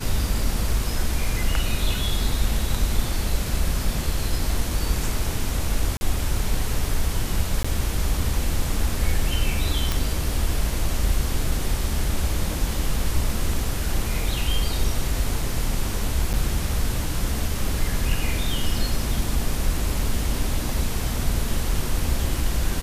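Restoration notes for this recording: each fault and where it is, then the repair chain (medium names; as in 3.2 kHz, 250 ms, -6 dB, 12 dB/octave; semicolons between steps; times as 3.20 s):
5.97–6.01 s: dropout 40 ms
7.63–7.64 s: dropout 15 ms
9.92 s: pop
16.33–16.34 s: dropout 8.3 ms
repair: de-click; interpolate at 5.97 s, 40 ms; interpolate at 7.63 s, 15 ms; interpolate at 16.33 s, 8.3 ms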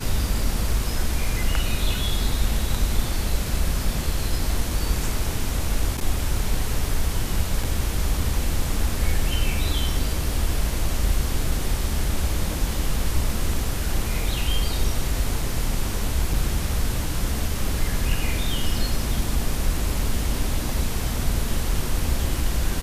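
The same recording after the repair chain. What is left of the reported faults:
nothing left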